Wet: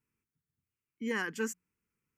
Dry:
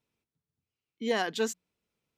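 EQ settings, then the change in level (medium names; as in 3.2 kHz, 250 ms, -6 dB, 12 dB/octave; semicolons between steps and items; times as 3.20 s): static phaser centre 1.6 kHz, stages 4; 0.0 dB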